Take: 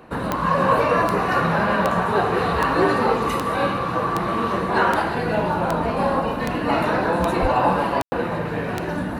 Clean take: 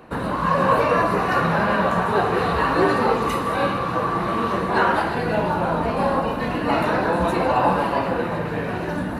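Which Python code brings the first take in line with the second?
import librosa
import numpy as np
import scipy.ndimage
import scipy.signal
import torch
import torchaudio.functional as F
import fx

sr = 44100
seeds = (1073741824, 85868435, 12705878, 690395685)

y = fx.fix_declick_ar(x, sr, threshold=10.0)
y = fx.fix_deplosive(y, sr, at_s=(7.41,))
y = fx.fix_ambience(y, sr, seeds[0], print_start_s=0.0, print_end_s=0.5, start_s=8.02, end_s=8.12)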